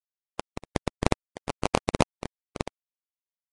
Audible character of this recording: a quantiser's noise floor 6-bit, dither none; tremolo triangle 1.2 Hz, depth 80%; aliases and images of a low sample rate 1600 Hz, jitter 20%; Vorbis

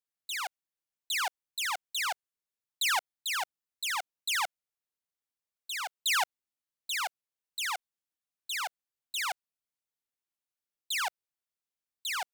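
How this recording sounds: noise floor -93 dBFS; spectral tilt -2.5 dB/oct

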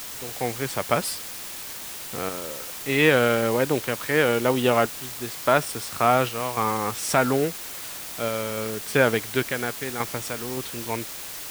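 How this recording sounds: random-step tremolo, depth 75%; a quantiser's noise floor 6-bit, dither triangular

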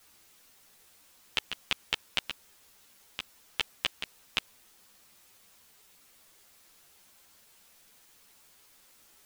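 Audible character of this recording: chopped level 1.2 Hz, depth 60%, duty 65%; a quantiser's noise floor 10-bit, dither triangular; a shimmering, thickened sound

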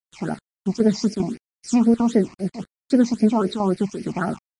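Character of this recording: chopped level 2.5 Hz, depth 60%, duty 85%; a quantiser's noise floor 8-bit, dither none; phasing stages 8, 3.8 Hz, lowest notch 440–1100 Hz; MP3

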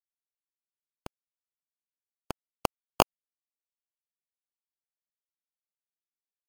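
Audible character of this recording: a quantiser's noise floor 10-bit, dither none; phasing stages 6, 0.8 Hz, lowest notch 800–1800 Hz; aliases and images of a low sample rate 1900 Hz, jitter 0%; MP3

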